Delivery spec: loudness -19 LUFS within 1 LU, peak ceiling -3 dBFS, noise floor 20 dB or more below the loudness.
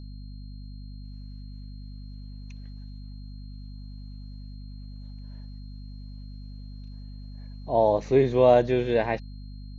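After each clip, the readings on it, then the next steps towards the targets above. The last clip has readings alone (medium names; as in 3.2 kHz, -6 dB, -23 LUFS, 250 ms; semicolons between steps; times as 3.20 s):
hum 50 Hz; highest harmonic 250 Hz; hum level -38 dBFS; steady tone 4.2 kHz; tone level -58 dBFS; loudness -22.5 LUFS; peak level -7.0 dBFS; loudness target -19.0 LUFS
-> hum notches 50/100/150/200/250 Hz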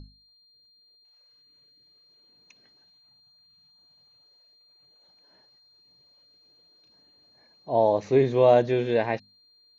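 hum not found; steady tone 4.2 kHz; tone level -58 dBFS
-> band-stop 4.2 kHz, Q 30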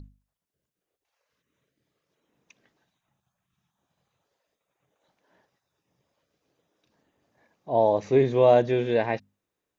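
steady tone not found; loudness -22.5 LUFS; peak level -7.5 dBFS; loudness target -19.0 LUFS
-> trim +3.5 dB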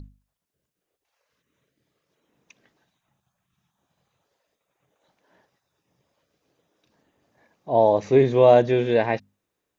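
loudness -19.0 LUFS; peak level -4.0 dBFS; noise floor -82 dBFS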